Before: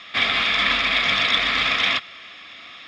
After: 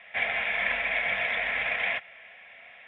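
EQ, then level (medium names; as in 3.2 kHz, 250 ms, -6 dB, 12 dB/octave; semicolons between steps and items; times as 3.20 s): distance through air 410 m; tone controls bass -11 dB, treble -8 dB; static phaser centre 1.2 kHz, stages 6; 0.0 dB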